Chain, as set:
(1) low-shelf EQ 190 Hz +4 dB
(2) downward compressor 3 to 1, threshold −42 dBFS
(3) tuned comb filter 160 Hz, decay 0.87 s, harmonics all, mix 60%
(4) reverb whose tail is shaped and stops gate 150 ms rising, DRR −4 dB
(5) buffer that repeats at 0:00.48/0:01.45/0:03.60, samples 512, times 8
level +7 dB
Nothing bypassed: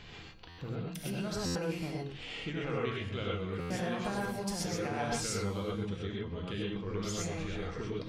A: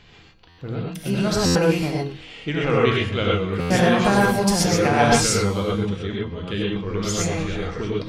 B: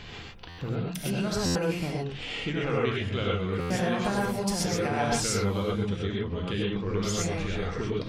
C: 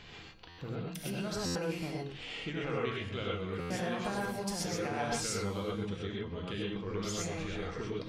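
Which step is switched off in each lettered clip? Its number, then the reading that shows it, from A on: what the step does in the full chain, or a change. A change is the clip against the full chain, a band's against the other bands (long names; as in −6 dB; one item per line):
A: 2, average gain reduction 12.0 dB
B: 3, change in integrated loudness +7.0 LU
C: 1, 125 Hz band −2.0 dB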